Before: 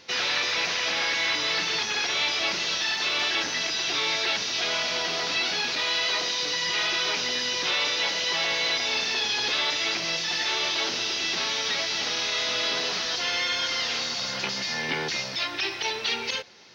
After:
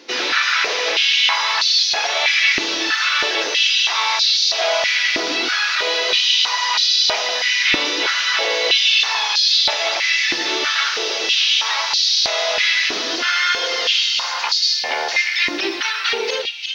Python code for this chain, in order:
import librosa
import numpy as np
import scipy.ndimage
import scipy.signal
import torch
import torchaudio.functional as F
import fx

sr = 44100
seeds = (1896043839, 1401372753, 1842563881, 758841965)

y = x + 10.0 ** (-8.5 / 20.0) * np.pad(x, (int(353 * sr / 1000.0), 0))[:len(x)]
y = fx.filter_held_highpass(y, sr, hz=3.1, low_hz=310.0, high_hz=4300.0)
y = F.gain(torch.from_numpy(y), 4.5).numpy()